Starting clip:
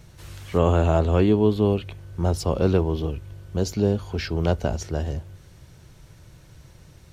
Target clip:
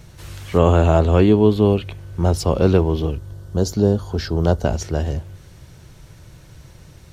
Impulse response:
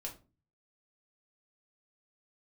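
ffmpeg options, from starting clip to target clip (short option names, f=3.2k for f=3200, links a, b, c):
-filter_complex "[0:a]asettb=1/sr,asplit=3[a][b][c];[a]atrim=end=3.154[d];[b]atrim=start=3.15:end=4.65,asetpts=PTS-STARTPTS,afade=t=in:d=0.004:c=qsin,afade=t=out:st=1.496:d=0.004:c=qsin,equalizer=f=2.4k:w=2.4:g=-14[e];[c]atrim=start=4.646[f];[d][e]acrossfade=d=0.004:c1=hsin:c2=qsin[g];[g][f]acrossfade=d=0.004:c1=qsin:c2=hsin,volume=5dB"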